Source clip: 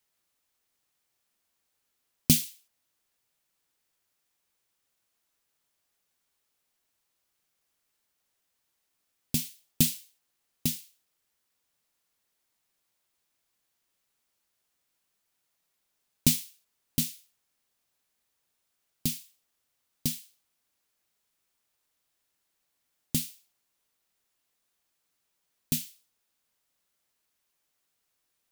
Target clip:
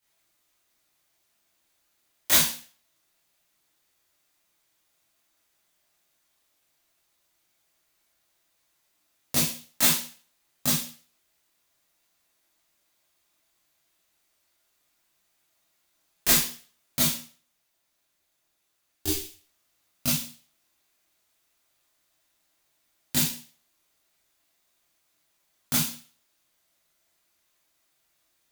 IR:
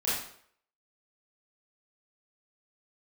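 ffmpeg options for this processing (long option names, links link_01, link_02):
-filter_complex "[0:a]aeval=exprs='(mod(6.68*val(0)+1,2)-1)/6.68':channel_layout=same,asettb=1/sr,asplit=3[link_01][link_02][link_03];[link_01]atrim=end=17.134[link_04];[link_02]atrim=start=17.13:end=19.17,asetpts=PTS-STARTPTS,afade=type=in:duration=0.004:curve=qsin,afade=type=out:start_time=2.036:duration=0.004:curve=qsin,aeval=exprs='val(0)*sin(2*PI*150*n/s)':channel_layout=same[link_05];[link_03]atrim=start=19.166[link_06];[link_04][link_05]acrossfade=duration=0.004:curve1=hsin:curve2=qsin[link_07];[link_07][link_06]acrossfade=duration=0.004:curve1=qsin:curve2=hsin[link_08];[1:a]atrim=start_sample=2205,asetrate=61740,aresample=44100[link_09];[link_08][link_09]afir=irnorm=-1:irlink=0,volume=2dB"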